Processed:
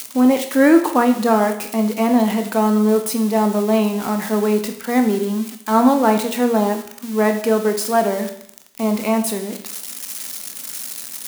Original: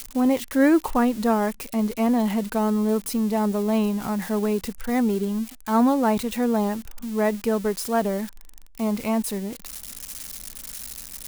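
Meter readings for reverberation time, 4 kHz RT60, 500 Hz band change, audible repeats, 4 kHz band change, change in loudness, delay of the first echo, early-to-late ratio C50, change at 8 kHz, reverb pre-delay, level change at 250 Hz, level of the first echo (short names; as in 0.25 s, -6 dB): 0.65 s, 0.65 s, +7.0 dB, none, +7.0 dB, +5.5 dB, none, 9.5 dB, +7.0 dB, 17 ms, +5.0 dB, none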